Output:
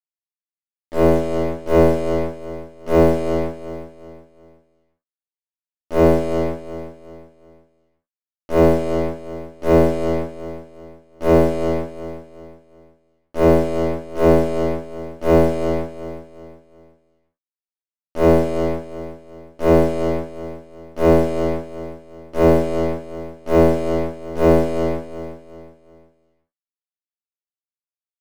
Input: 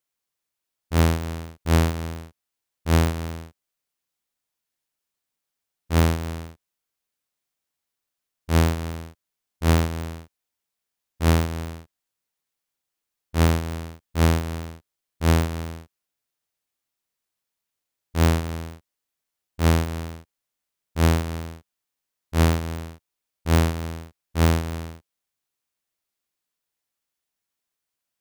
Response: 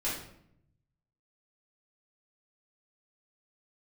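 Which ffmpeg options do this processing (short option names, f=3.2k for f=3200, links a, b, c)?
-filter_complex "[0:a]dynaudnorm=f=310:g=5:m=16dB,bandpass=f=500:t=q:w=1.4:csg=0,acrusher=bits=4:mix=0:aa=0.5,aecho=1:1:365|730|1095|1460:0.237|0.0854|0.0307|0.0111[a];[1:a]atrim=start_sample=2205,afade=t=out:st=0.15:d=0.01,atrim=end_sample=7056[b];[a][b]afir=irnorm=-1:irlink=0,volume=-2dB"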